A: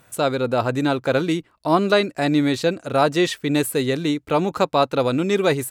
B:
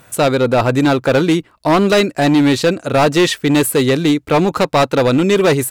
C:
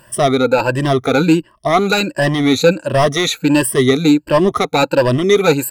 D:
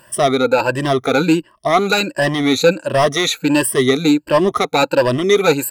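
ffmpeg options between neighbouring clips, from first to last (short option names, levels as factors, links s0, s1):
-af "asoftclip=type=hard:threshold=0.15,volume=2.66"
-af "afftfilt=real='re*pow(10,18/40*sin(2*PI*(1.3*log(max(b,1)*sr/1024/100)/log(2)-(1.4)*(pts-256)/sr)))':imag='im*pow(10,18/40*sin(2*PI*(1.3*log(max(b,1)*sr/1024/100)/log(2)-(1.4)*(pts-256)/sr)))':win_size=1024:overlap=0.75,volume=0.668"
-af "lowshelf=f=180:g=-8"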